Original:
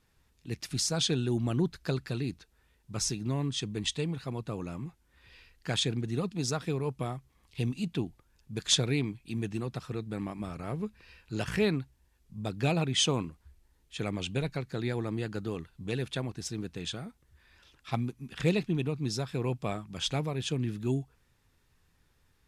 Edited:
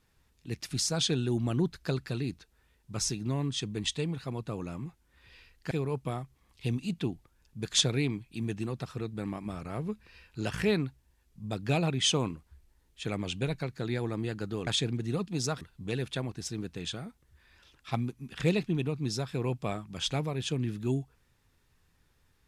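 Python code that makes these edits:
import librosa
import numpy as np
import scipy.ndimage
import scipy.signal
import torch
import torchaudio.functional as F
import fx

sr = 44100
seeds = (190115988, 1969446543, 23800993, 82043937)

y = fx.edit(x, sr, fx.move(start_s=5.71, length_s=0.94, to_s=15.61), tone=tone)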